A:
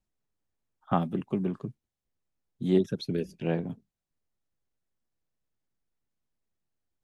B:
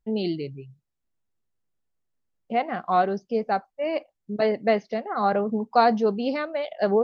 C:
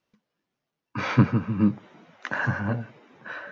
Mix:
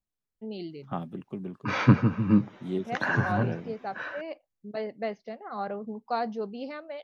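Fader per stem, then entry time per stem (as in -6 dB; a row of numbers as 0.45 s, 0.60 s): -7.5 dB, -11.0 dB, 0.0 dB; 0.00 s, 0.35 s, 0.70 s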